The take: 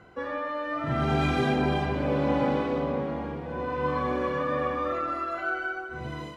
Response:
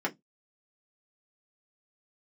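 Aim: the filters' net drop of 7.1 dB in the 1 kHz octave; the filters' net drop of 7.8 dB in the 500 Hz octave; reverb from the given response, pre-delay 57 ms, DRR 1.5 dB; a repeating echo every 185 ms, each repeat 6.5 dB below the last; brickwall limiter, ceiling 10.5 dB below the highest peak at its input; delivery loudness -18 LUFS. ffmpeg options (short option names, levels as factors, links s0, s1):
-filter_complex "[0:a]equalizer=f=500:t=o:g=-7.5,equalizer=f=1000:t=o:g=-7.5,alimiter=level_in=1.41:limit=0.0631:level=0:latency=1,volume=0.708,aecho=1:1:185|370|555|740|925|1110:0.473|0.222|0.105|0.0491|0.0231|0.0109,asplit=2[s0][s1];[1:a]atrim=start_sample=2205,adelay=57[s2];[s1][s2]afir=irnorm=-1:irlink=0,volume=0.355[s3];[s0][s3]amix=inputs=2:normalize=0,volume=5.01"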